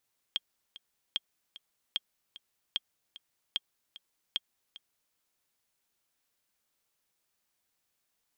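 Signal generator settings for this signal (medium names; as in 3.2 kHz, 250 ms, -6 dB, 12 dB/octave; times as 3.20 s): metronome 150 bpm, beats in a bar 2, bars 6, 3.24 kHz, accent 18 dB -16.5 dBFS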